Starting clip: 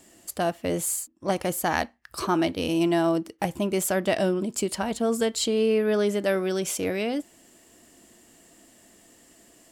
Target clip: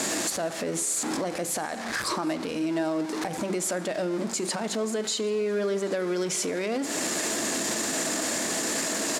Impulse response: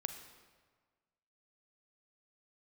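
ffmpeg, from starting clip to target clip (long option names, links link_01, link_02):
-filter_complex "[0:a]aeval=exprs='val(0)+0.5*0.0335*sgn(val(0))':channel_layout=same,lowpass=8700,bandreject=frequency=50:width_type=h:width=6,bandreject=frequency=100:width_type=h:width=6,bandreject=frequency=150:width_type=h:width=6,bandreject=frequency=200:width_type=h:width=6,bandreject=frequency=250:width_type=h:width=6,bandreject=frequency=300:width_type=h:width=6,bandreject=frequency=350:width_type=h:width=6,bandreject=frequency=400:width_type=h:width=6,acompressor=threshold=-32dB:ratio=16,highpass=180,acontrast=30,asplit=2[link_01][link_02];[1:a]atrim=start_sample=2205,lowshelf=frequency=200:gain=-11[link_03];[link_02][link_03]afir=irnorm=-1:irlink=0,volume=-0.5dB[link_04];[link_01][link_04]amix=inputs=2:normalize=0,alimiter=limit=-19dB:level=0:latency=1:release=72,equalizer=frequency=3000:width_type=o:width=0.37:gain=-6,atempo=1.1,aecho=1:1:756:0.0668,asetrate=42336,aresample=44100"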